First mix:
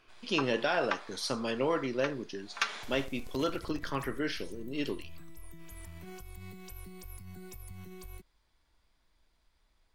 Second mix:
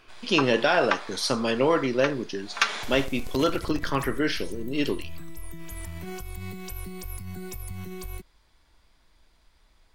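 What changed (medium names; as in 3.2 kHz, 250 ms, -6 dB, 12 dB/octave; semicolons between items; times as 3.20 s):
speech +8.0 dB; background +10.0 dB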